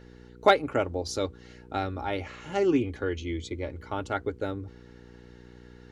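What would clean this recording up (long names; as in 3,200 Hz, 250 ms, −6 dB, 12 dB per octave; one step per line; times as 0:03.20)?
clipped peaks rebuilt −8.5 dBFS
hum removal 60.5 Hz, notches 8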